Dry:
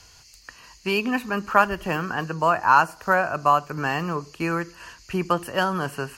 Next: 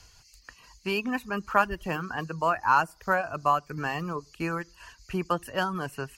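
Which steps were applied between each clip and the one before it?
low shelf 70 Hz +9.5 dB; reverb removal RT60 0.61 s; gain -5 dB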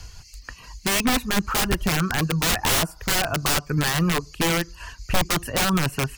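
wrapped overs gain 24.5 dB; low shelf 170 Hz +10 dB; gain +8.5 dB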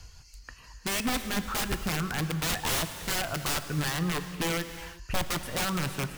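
non-linear reverb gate 0.4 s flat, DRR 9.5 dB; gain -8 dB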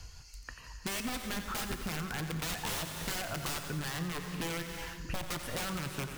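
compressor, threshold -34 dBFS, peak gain reduction 10.5 dB; on a send: split-band echo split 350 Hz, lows 0.645 s, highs 89 ms, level -10.5 dB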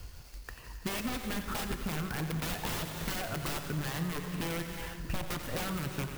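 in parallel at -7.5 dB: decimation with a swept rate 38×, swing 100% 3 Hz; on the sum: clock jitter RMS 0.032 ms

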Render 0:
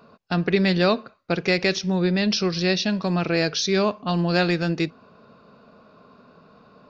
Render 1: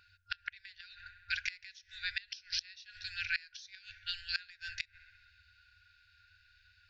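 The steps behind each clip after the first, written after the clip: dark delay 65 ms, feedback 74%, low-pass 840 Hz, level -9 dB; FFT band-reject 100–1400 Hz; flipped gate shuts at -18 dBFS, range -25 dB; gain -2 dB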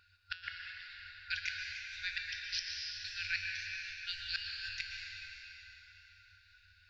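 resonator 87 Hz, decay 0.65 s, harmonics odd, mix 70%; plate-style reverb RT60 3.9 s, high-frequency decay 0.9×, pre-delay 0.105 s, DRR 0 dB; gain +6.5 dB

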